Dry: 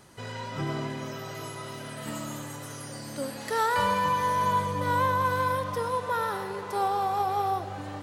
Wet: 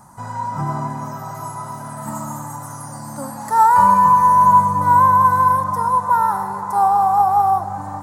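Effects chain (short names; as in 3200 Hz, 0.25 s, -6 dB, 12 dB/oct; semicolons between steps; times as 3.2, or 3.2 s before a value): EQ curve 100 Hz 0 dB, 200 Hz +4 dB, 440 Hz -13 dB, 900 Hz +11 dB, 3000 Hz -21 dB, 7400 Hz +1 dB; gain +6.5 dB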